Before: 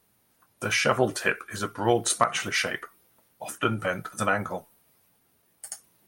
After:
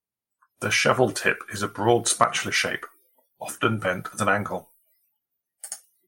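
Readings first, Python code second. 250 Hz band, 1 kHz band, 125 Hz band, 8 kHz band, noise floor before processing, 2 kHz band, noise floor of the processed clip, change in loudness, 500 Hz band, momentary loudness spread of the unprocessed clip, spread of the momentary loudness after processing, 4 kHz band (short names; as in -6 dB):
+3.0 dB, +3.0 dB, +3.0 dB, +3.0 dB, -68 dBFS, +3.0 dB, under -85 dBFS, +3.0 dB, +3.0 dB, 16 LU, 16 LU, +3.0 dB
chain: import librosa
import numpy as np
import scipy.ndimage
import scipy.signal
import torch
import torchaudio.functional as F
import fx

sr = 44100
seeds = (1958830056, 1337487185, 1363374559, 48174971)

y = fx.noise_reduce_blind(x, sr, reduce_db=29)
y = F.gain(torch.from_numpy(y), 3.0).numpy()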